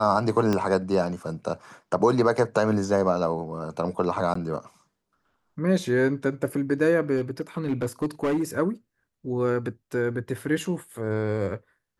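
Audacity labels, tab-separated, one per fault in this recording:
0.530000	0.530000	pop -12 dBFS
4.340000	4.350000	gap 14 ms
7.160000	8.430000	clipped -20.5 dBFS

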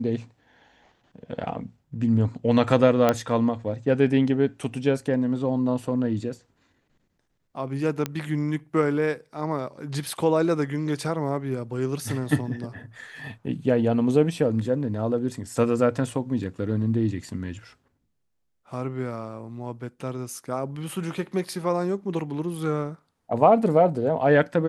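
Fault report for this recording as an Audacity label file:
3.090000	3.090000	pop -7 dBFS
8.060000	8.060000	pop -12 dBFS

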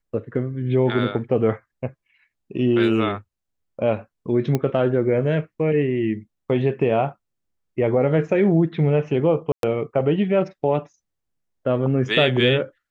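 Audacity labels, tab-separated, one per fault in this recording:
4.550000	4.550000	pop -9 dBFS
9.520000	9.630000	gap 0.112 s

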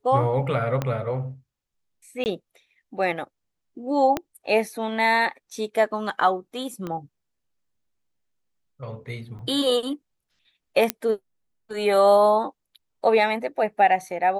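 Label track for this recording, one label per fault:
0.820000	0.820000	pop -12 dBFS
2.240000	2.260000	gap 19 ms
4.170000	4.170000	pop -10 dBFS
6.870000	6.870000	pop -19 dBFS
9.390000	9.390000	gap 2.6 ms
10.900000	10.900000	pop -4 dBFS

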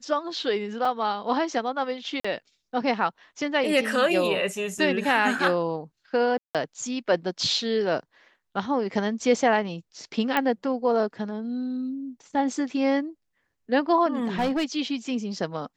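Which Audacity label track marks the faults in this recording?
0.850000	0.850000	gap 3.4 ms
2.200000	2.250000	gap 45 ms
4.780000	4.780000	gap 4.4 ms
6.380000	6.550000	gap 0.167 s
10.370000	10.370000	pop -10 dBFS
14.230000	14.650000	clipped -20.5 dBFS

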